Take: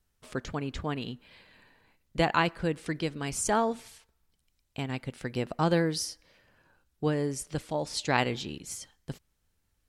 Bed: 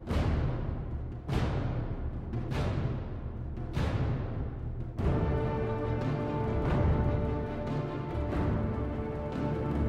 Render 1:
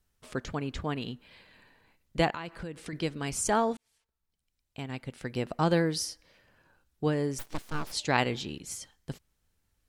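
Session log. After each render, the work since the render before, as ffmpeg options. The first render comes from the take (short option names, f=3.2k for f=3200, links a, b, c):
-filter_complex "[0:a]asettb=1/sr,asplit=3[a][b][c];[a]atrim=end=2.304[d];[b]atrim=start=2.3:end=2.93,asetpts=PTS-STARTPTS,afade=t=in:d=0.004:c=qsin,afade=t=out:st=0.626:d=0.004:c=qsin,acompressor=threshold=-35dB:ratio=5:attack=3.2:release=140:knee=1:detection=peak[e];[c]atrim=start=2.926[f];[d][e]acrossfade=d=0.004:c1=hsin:c2=qsin[g];[g][f]acrossfade=d=0.004:c1=qsin:c2=hsin,asplit=3[h][i][j];[h]afade=t=out:st=7.38:d=0.02[k];[i]aeval=exprs='abs(val(0))':c=same,afade=t=in:st=7.38:d=0.02,afade=t=out:st=7.91:d=0.02[l];[j]afade=t=in:st=7.91:d=0.02[m];[k][l][m]amix=inputs=3:normalize=0,asplit=2[n][o];[n]atrim=end=3.77,asetpts=PTS-STARTPTS,afade=t=out:st=3.766:d=0.004:c=hsin[p];[o]atrim=start=3.77,asetpts=PTS-STARTPTS,afade=t=in:d=1.75[q];[p][q]concat=n=2:v=0:a=1"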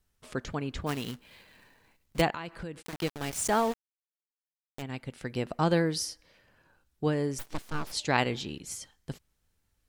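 -filter_complex "[0:a]asplit=3[a][b][c];[a]afade=t=out:st=0.86:d=0.02[d];[b]acrusher=bits=2:mode=log:mix=0:aa=0.000001,afade=t=in:st=0.86:d=0.02,afade=t=out:st=2.2:d=0.02[e];[c]afade=t=in:st=2.2:d=0.02[f];[d][e][f]amix=inputs=3:normalize=0,asplit=3[g][h][i];[g]afade=t=out:st=2.81:d=0.02[j];[h]aeval=exprs='val(0)*gte(abs(val(0)),0.02)':c=same,afade=t=in:st=2.81:d=0.02,afade=t=out:st=4.81:d=0.02[k];[i]afade=t=in:st=4.81:d=0.02[l];[j][k][l]amix=inputs=3:normalize=0"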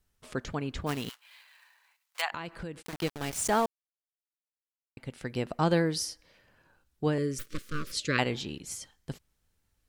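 -filter_complex "[0:a]asettb=1/sr,asplit=3[a][b][c];[a]atrim=end=1.094[d];[b]atrim=start=1.09:end=2.32,asetpts=PTS-STARTPTS,afade=t=in:d=0.004:c=qsin,afade=t=out:st=1.226:d=0.004:c=qsin,highpass=f=900:w=0.5412,highpass=f=900:w=1.3066[e];[c]atrim=start=2.316[f];[d][e]acrossfade=d=0.004:c1=hsin:c2=qsin[g];[g][f]acrossfade=d=0.004:c1=qsin:c2=hsin,asettb=1/sr,asplit=3[h][i][j];[h]atrim=end=7.184[k];[i]atrim=start=7.18:end=8.19,asetpts=PTS-STARTPTS,afade=t=in:d=0.004:c=qsin,afade=t=out:st=1.006:d=0.004:c=qsin,asuperstop=centerf=800:order=8:qfactor=1.4[l];[j]atrim=start=8.186[m];[k][l]acrossfade=d=0.004:c1=hsin:c2=qsin[n];[n][m]acrossfade=d=0.004:c1=qsin:c2=hsin,asplit=3[o][p][q];[o]atrim=end=3.66,asetpts=PTS-STARTPTS,afade=t=out:st=3.656:d=0.004:c=hsin[r];[p]atrim=start=3.66:end=4.97,asetpts=PTS-STARTPTS,volume=0[s];[q]atrim=start=4.97,asetpts=PTS-STARTPTS,afade=t=in:d=0.004:c=hsin[t];[r][s][t]concat=n=3:v=0:a=1"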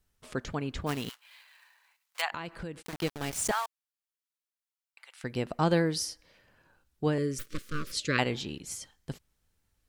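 -filter_complex "[0:a]asettb=1/sr,asplit=3[a][b][c];[a]atrim=end=3.514[d];[b]atrim=start=3.51:end=5.24,asetpts=PTS-STARTPTS,afade=t=in:d=0.004:c=qsin,afade=t=out:st=1.726:d=0.004:c=qsin,highpass=f=960:w=0.5412,highpass=f=960:w=1.3066[e];[c]atrim=start=5.236[f];[d][e]acrossfade=d=0.004:c1=hsin:c2=qsin[g];[g][f]acrossfade=d=0.004:c1=qsin:c2=hsin"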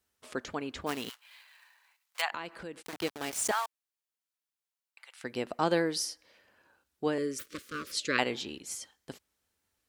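-af "highpass=110,equalizer=f=140:w=1.5:g=-12.5"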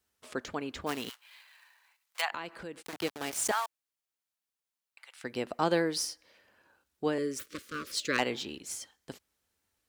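-filter_complex "[0:a]acrossover=split=820|4700[a][b][c];[b]asoftclip=type=hard:threshold=-21dB[d];[c]acrusher=bits=3:mode=log:mix=0:aa=0.000001[e];[a][d][e]amix=inputs=3:normalize=0"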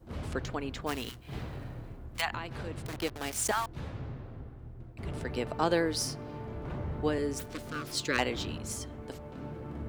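-filter_complex "[1:a]volume=-9.5dB[a];[0:a][a]amix=inputs=2:normalize=0"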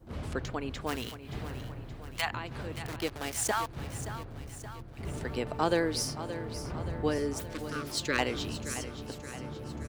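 -af "aecho=1:1:574|1148|1722|2296|2870|3444:0.251|0.146|0.0845|0.049|0.0284|0.0165"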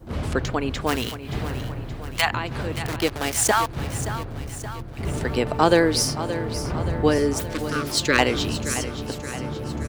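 -af "volume=10.5dB"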